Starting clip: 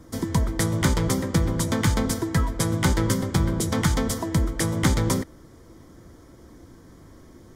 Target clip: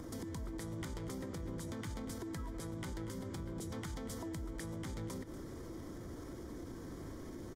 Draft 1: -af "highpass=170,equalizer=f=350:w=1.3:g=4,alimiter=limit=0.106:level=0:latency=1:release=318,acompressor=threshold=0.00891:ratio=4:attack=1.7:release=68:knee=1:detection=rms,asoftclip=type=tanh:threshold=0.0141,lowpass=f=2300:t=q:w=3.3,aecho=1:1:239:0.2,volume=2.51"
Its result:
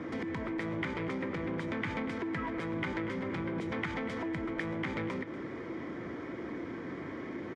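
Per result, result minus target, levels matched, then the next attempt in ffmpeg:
compression: peak gain reduction -8.5 dB; 2 kHz band +8.0 dB; 125 Hz band -5.5 dB
-af "highpass=170,equalizer=f=350:w=1.3:g=4,alimiter=limit=0.106:level=0:latency=1:release=318,acompressor=threshold=0.00251:ratio=4:attack=1.7:release=68:knee=1:detection=rms,asoftclip=type=tanh:threshold=0.0141,lowpass=f=2300:t=q:w=3.3,aecho=1:1:239:0.2,volume=2.51"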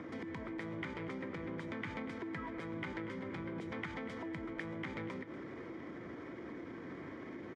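2 kHz band +8.0 dB; 125 Hz band -5.5 dB
-af "highpass=170,equalizer=f=350:w=1.3:g=4,alimiter=limit=0.106:level=0:latency=1:release=318,acompressor=threshold=0.00251:ratio=4:attack=1.7:release=68:knee=1:detection=rms,asoftclip=type=tanh:threshold=0.0141,aecho=1:1:239:0.2,volume=2.51"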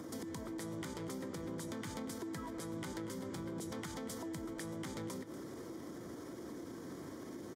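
125 Hz band -5.0 dB
-af "equalizer=f=350:w=1.3:g=4,alimiter=limit=0.106:level=0:latency=1:release=318,acompressor=threshold=0.00251:ratio=4:attack=1.7:release=68:knee=1:detection=rms,asoftclip=type=tanh:threshold=0.0141,aecho=1:1:239:0.2,volume=2.51"

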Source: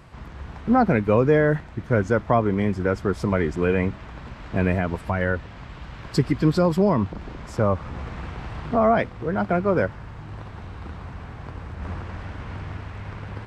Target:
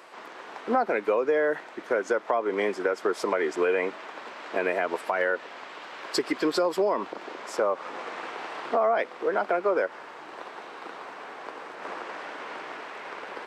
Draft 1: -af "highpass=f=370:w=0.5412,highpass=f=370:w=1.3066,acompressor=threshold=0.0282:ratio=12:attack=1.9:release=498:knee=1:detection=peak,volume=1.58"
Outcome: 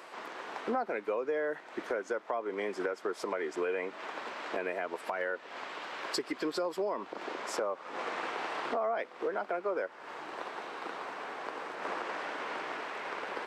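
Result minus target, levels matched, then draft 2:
compression: peak gain reduction +8.5 dB
-af "highpass=f=370:w=0.5412,highpass=f=370:w=1.3066,acompressor=threshold=0.0841:ratio=12:attack=1.9:release=498:knee=1:detection=peak,volume=1.58"

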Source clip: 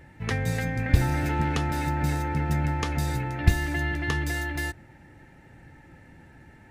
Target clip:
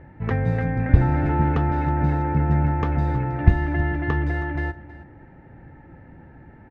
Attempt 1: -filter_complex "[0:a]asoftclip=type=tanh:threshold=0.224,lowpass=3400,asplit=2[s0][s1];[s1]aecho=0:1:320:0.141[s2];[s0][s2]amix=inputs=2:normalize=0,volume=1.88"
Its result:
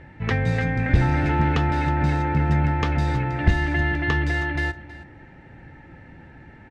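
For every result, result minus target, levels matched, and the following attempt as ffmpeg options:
4 kHz band +13.0 dB; saturation: distortion +18 dB
-filter_complex "[0:a]asoftclip=type=tanh:threshold=0.224,lowpass=1300,asplit=2[s0][s1];[s1]aecho=0:1:320:0.141[s2];[s0][s2]amix=inputs=2:normalize=0,volume=1.88"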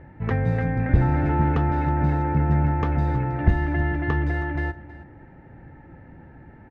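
saturation: distortion +18 dB
-filter_complex "[0:a]asoftclip=type=tanh:threshold=0.891,lowpass=1300,asplit=2[s0][s1];[s1]aecho=0:1:320:0.141[s2];[s0][s2]amix=inputs=2:normalize=0,volume=1.88"

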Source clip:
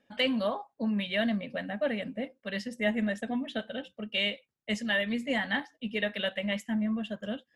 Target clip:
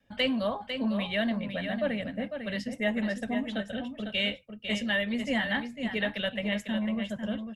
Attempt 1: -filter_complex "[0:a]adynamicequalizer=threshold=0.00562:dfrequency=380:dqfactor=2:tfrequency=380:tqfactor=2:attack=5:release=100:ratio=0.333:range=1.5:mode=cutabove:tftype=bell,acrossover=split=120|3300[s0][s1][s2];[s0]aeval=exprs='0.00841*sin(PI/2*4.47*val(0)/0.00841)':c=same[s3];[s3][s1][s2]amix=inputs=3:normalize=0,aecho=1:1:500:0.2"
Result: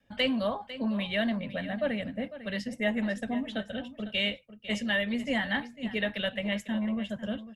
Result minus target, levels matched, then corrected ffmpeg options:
echo-to-direct -6 dB
-filter_complex "[0:a]adynamicequalizer=threshold=0.00562:dfrequency=380:dqfactor=2:tfrequency=380:tqfactor=2:attack=5:release=100:ratio=0.333:range=1.5:mode=cutabove:tftype=bell,acrossover=split=120|3300[s0][s1][s2];[s0]aeval=exprs='0.00841*sin(PI/2*4.47*val(0)/0.00841)':c=same[s3];[s3][s1][s2]amix=inputs=3:normalize=0,aecho=1:1:500:0.422"

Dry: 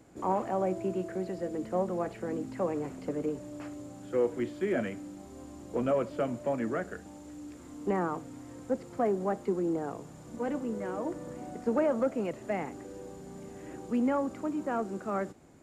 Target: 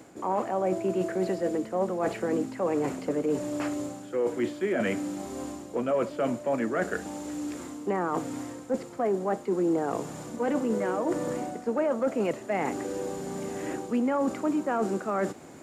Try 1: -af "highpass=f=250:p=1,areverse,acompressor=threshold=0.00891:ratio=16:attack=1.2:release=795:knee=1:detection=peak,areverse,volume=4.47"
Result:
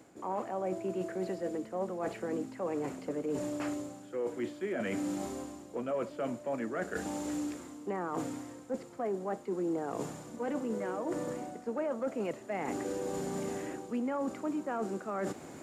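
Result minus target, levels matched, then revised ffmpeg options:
compression: peak gain reduction +7.5 dB
-af "highpass=f=250:p=1,areverse,acompressor=threshold=0.0224:ratio=16:attack=1.2:release=795:knee=1:detection=peak,areverse,volume=4.47"

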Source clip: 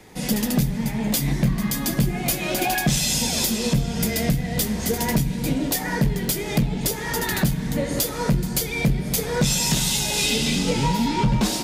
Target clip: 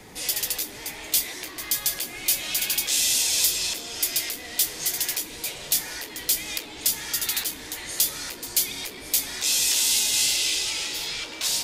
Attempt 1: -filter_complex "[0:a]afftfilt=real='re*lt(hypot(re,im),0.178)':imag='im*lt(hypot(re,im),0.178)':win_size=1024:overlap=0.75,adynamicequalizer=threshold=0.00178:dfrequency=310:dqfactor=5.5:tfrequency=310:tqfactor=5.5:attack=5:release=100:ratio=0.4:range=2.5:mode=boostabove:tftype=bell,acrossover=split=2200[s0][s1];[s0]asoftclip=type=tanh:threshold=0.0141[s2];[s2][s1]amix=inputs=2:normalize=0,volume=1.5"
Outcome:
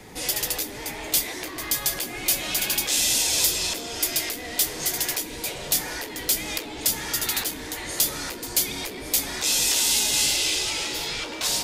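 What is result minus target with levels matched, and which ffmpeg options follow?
saturation: distortion -4 dB
-filter_complex "[0:a]afftfilt=real='re*lt(hypot(re,im),0.178)':imag='im*lt(hypot(re,im),0.178)':win_size=1024:overlap=0.75,adynamicequalizer=threshold=0.00178:dfrequency=310:dqfactor=5.5:tfrequency=310:tqfactor=5.5:attack=5:release=100:ratio=0.4:range=2.5:mode=boostabove:tftype=bell,acrossover=split=2200[s0][s1];[s0]asoftclip=type=tanh:threshold=0.00531[s2];[s2][s1]amix=inputs=2:normalize=0,volume=1.5"

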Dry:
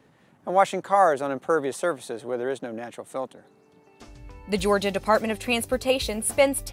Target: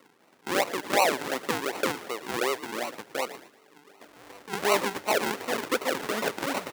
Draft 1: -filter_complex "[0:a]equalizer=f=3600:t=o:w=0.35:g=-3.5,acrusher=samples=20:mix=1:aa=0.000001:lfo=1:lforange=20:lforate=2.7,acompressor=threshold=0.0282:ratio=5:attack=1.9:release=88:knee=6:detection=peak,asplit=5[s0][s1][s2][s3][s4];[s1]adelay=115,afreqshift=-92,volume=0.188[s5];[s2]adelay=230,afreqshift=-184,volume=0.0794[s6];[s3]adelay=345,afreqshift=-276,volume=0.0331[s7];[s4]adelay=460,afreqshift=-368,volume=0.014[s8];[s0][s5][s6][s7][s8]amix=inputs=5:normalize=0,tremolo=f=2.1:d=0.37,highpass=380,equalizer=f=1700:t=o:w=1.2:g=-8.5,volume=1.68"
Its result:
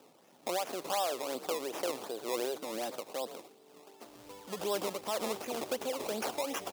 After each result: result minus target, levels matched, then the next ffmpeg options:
decimation with a swept rate: distortion -18 dB; compression: peak gain reduction +7.5 dB; 2 kHz band -6.5 dB
-filter_complex "[0:a]equalizer=f=3600:t=o:w=0.35:g=-3.5,acrusher=samples=51:mix=1:aa=0.000001:lfo=1:lforange=51:lforate=2.7,acompressor=threshold=0.0282:ratio=5:attack=1.9:release=88:knee=6:detection=peak,asplit=5[s0][s1][s2][s3][s4];[s1]adelay=115,afreqshift=-92,volume=0.188[s5];[s2]adelay=230,afreqshift=-184,volume=0.0794[s6];[s3]adelay=345,afreqshift=-276,volume=0.0331[s7];[s4]adelay=460,afreqshift=-368,volume=0.014[s8];[s0][s5][s6][s7][s8]amix=inputs=5:normalize=0,tremolo=f=2.1:d=0.37,highpass=380,equalizer=f=1700:t=o:w=1.2:g=-8.5,volume=1.68"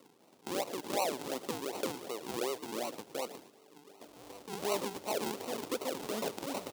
compression: peak gain reduction +7.5 dB; 2 kHz band -6.5 dB
-filter_complex "[0:a]equalizer=f=3600:t=o:w=0.35:g=-3.5,acrusher=samples=51:mix=1:aa=0.000001:lfo=1:lforange=51:lforate=2.7,acompressor=threshold=0.0841:ratio=5:attack=1.9:release=88:knee=6:detection=peak,asplit=5[s0][s1][s2][s3][s4];[s1]adelay=115,afreqshift=-92,volume=0.188[s5];[s2]adelay=230,afreqshift=-184,volume=0.0794[s6];[s3]adelay=345,afreqshift=-276,volume=0.0331[s7];[s4]adelay=460,afreqshift=-368,volume=0.014[s8];[s0][s5][s6][s7][s8]amix=inputs=5:normalize=0,tremolo=f=2.1:d=0.37,highpass=380,equalizer=f=1700:t=o:w=1.2:g=-8.5,volume=1.68"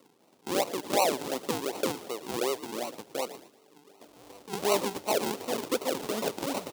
2 kHz band -6.5 dB
-filter_complex "[0:a]equalizer=f=3600:t=o:w=0.35:g=-3.5,acrusher=samples=51:mix=1:aa=0.000001:lfo=1:lforange=51:lforate=2.7,acompressor=threshold=0.0841:ratio=5:attack=1.9:release=88:knee=6:detection=peak,asplit=5[s0][s1][s2][s3][s4];[s1]adelay=115,afreqshift=-92,volume=0.188[s5];[s2]adelay=230,afreqshift=-184,volume=0.0794[s6];[s3]adelay=345,afreqshift=-276,volume=0.0331[s7];[s4]adelay=460,afreqshift=-368,volume=0.014[s8];[s0][s5][s6][s7][s8]amix=inputs=5:normalize=0,tremolo=f=2.1:d=0.37,highpass=380,equalizer=f=1700:t=o:w=1.2:g=3,volume=1.68"

